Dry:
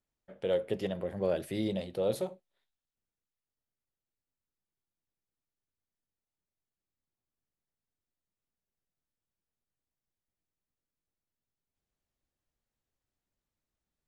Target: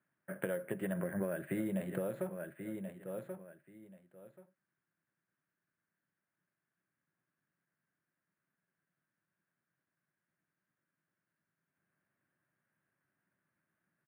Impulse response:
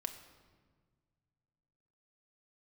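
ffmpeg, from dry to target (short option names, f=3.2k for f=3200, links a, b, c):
-af "aecho=1:1:1082|2164:0.141|0.0283,acompressor=threshold=-39dB:ratio=12,highpass=f=130:w=0.5412,highpass=f=130:w=1.3066,equalizer=f=170:t=q:w=4:g=4,equalizer=f=240:t=q:w=4:g=-4,equalizer=f=460:t=q:w=4:g=-9,equalizer=f=800:t=q:w=4:g=-7,equalizer=f=1.6k:t=q:w=4:g=10,lowpass=f=2.2k:w=0.5412,lowpass=f=2.2k:w=1.3066,acrusher=samples=4:mix=1:aa=0.000001,volume=9dB"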